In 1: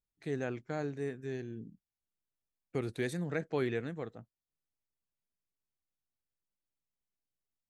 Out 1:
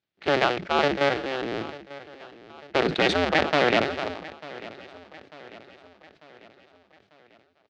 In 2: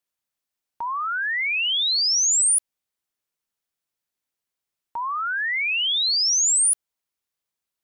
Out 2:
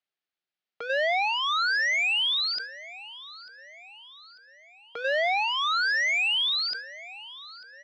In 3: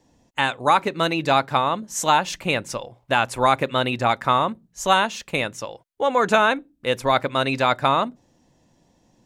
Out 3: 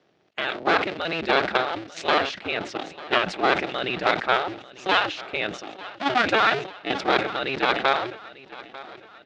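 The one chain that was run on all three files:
cycle switcher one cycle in 2, inverted; level held to a coarse grid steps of 9 dB; cabinet simulation 210–4300 Hz, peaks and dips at 240 Hz -6 dB, 500 Hz -4 dB, 1 kHz -9 dB; feedback delay 895 ms, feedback 51%, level -18.5 dB; decay stretcher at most 98 dB/s; normalise loudness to -24 LUFS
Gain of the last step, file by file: +19.0 dB, +4.0 dB, +2.0 dB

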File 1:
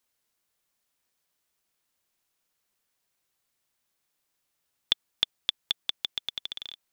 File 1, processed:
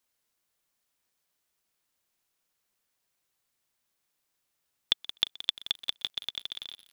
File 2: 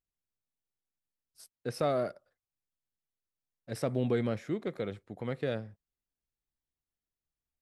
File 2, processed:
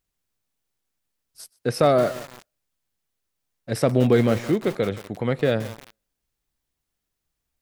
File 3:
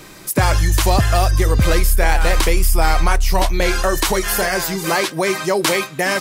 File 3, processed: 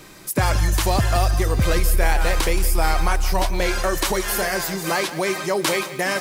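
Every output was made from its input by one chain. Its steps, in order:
thinning echo 125 ms, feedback 17%, high-pass 190 Hz, level -23.5 dB; bit-crushed delay 174 ms, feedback 55%, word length 6-bit, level -13.5 dB; peak normalisation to -6 dBFS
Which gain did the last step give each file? -1.0 dB, +12.0 dB, -4.0 dB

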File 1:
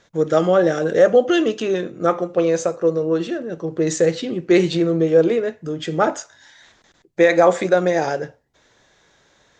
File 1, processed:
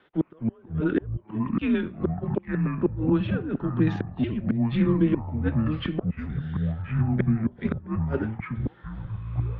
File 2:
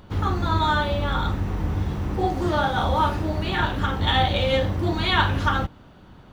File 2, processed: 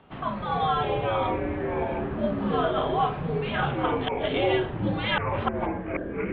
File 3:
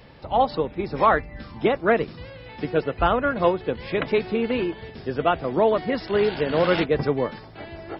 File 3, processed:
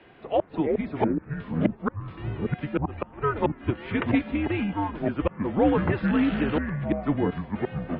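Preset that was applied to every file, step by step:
inverted gate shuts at -9 dBFS, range -37 dB; mistuned SSB -150 Hz 270–3400 Hz; ever faster or slower copies 191 ms, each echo -6 st, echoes 3; normalise loudness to -27 LUFS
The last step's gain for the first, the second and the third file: -2.0 dB, -2.5 dB, -1.5 dB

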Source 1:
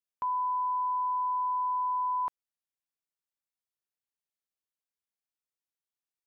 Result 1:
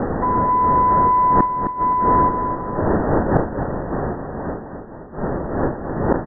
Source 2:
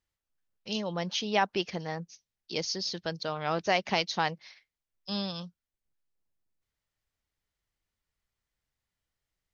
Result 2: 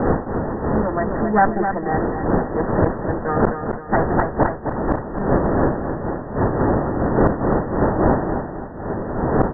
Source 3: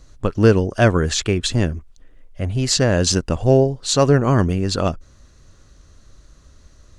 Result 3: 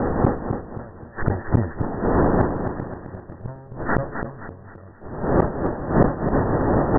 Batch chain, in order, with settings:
comb filter that takes the minimum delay 8.9 ms; wind noise 550 Hz -28 dBFS; Chebyshev low-pass 1.9 kHz, order 10; in parallel at -1 dB: peak limiter -13.5 dBFS; on the sum: inverted gate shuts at -10 dBFS, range -36 dB; on a send: feedback delay 262 ms, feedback 41%, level -7.5 dB; on the sum: decay stretcher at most 130 dB/s; peak normalisation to -2 dBFS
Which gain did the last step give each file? +5.5 dB, +6.0 dB, +6.5 dB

